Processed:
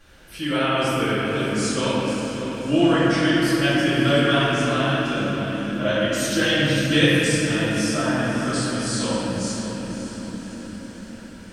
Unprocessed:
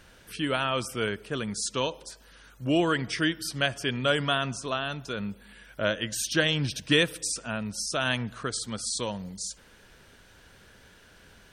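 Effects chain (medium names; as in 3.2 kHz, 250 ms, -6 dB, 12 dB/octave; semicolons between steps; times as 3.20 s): 7.90–8.44 s: low-pass 1.6 kHz 24 dB/octave; echo that smears into a reverb 577 ms, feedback 55%, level -10.5 dB; reverberation, pre-delay 4 ms, DRR -13 dB; trim -6.5 dB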